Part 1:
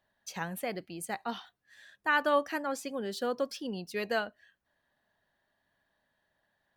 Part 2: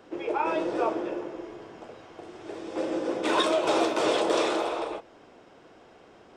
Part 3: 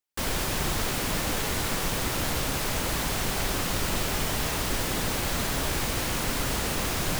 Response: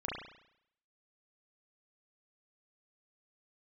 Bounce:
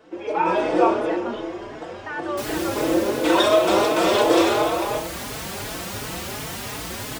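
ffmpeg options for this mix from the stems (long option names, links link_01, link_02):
-filter_complex "[0:a]lowpass=3300,alimiter=level_in=2dB:limit=-24dB:level=0:latency=1,volume=-2dB,volume=-1dB[link_01];[1:a]volume=1dB,asplit=2[link_02][link_03];[link_03]volume=-5.5dB[link_04];[2:a]highpass=70,adelay=2200,volume=-8dB[link_05];[3:a]atrim=start_sample=2205[link_06];[link_04][link_06]afir=irnorm=-1:irlink=0[link_07];[link_01][link_02][link_05][link_07]amix=inputs=4:normalize=0,dynaudnorm=framelen=100:gausssize=9:maxgain=8.5dB,asplit=2[link_08][link_09];[link_09]adelay=4.2,afreqshift=2.8[link_10];[link_08][link_10]amix=inputs=2:normalize=1"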